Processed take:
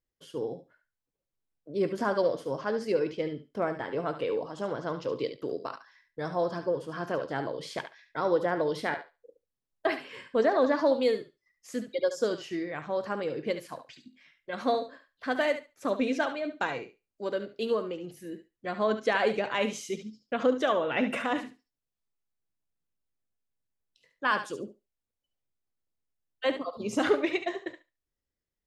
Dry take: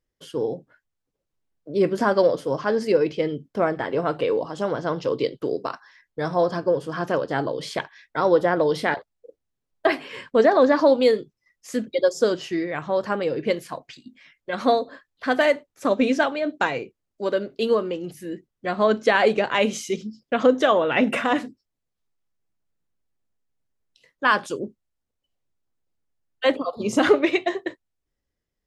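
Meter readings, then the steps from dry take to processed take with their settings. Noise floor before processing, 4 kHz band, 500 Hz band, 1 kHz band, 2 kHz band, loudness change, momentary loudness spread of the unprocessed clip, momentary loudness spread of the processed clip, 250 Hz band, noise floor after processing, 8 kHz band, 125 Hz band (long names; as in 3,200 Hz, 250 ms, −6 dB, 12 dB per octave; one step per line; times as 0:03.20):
−81 dBFS, −7.5 dB, −8.0 dB, −7.5 dB, −7.5 dB, −8.0 dB, 13 LU, 13 LU, −8.0 dB, below −85 dBFS, −7.5 dB, −8.0 dB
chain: feedback echo with a high-pass in the loop 71 ms, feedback 17%, high-pass 600 Hz, level −9 dB
level −8 dB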